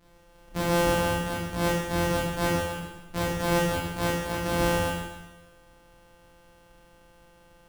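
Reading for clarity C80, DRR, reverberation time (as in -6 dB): 2.0 dB, -7.0 dB, 1.1 s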